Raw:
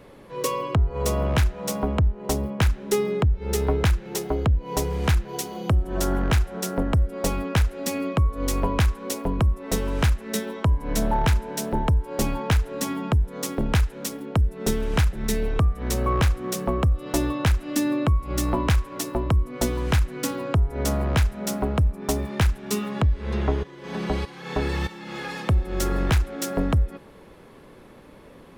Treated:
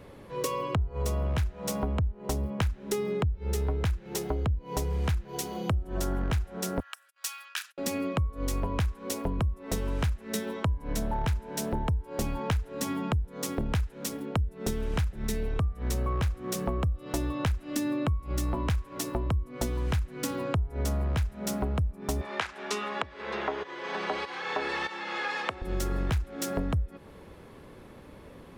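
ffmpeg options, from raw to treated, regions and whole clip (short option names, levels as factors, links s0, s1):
-filter_complex "[0:a]asettb=1/sr,asplit=3[s0][s1][s2];[s0]atrim=end=6.804[s3];[s1]atrim=start=6.8:end=7.78,asetpts=PTS-STARTPTS,afade=t=in:d=0.004:c=qsin,afade=t=out:st=0.976:d=0.004:c=qsin,agate=range=0.0224:threshold=0.0282:ratio=16:release=100:detection=peak,highpass=f=1500:w=0.5412,highpass=f=1500:w=1.3066,bandreject=f=2100:w=5.6[s4];[s2]atrim=start=7.776[s5];[s3][s4]acrossfade=d=0.004:c1=hsin:c2=qsin[s6];[s6][s5]acrossfade=d=0.004:c1=qsin:c2=hsin,asettb=1/sr,asplit=3[s7][s8][s9];[s7]atrim=end=22.214[s10];[s8]atrim=start=22.21:end=25.62,asetpts=PTS-STARTPTS,afade=t=in:d=0.004:c=qsin,afade=t=out:st=3.406:d=0.004:c=qsin,equalizer=f=1400:t=o:w=2.7:g=6,acompressor=mode=upward:threshold=0.0501:ratio=2.5:attack=3.2:release=140:knee=2.83:detection=peak,highpass=440,lowpass=6700[s11];[s9]atrim=start=25.616[s12];[s10][s11]acrossfade=d=0.004:c1=hsin:c2=qsin[s13];[s13][s12]acrossfade=d=0.004:c1=qsin:c2=hsin,equalizer=f=77:t=o:w=1.2:g=7,acompressor=threshold=0.0562:ratio=4,volume=0.794"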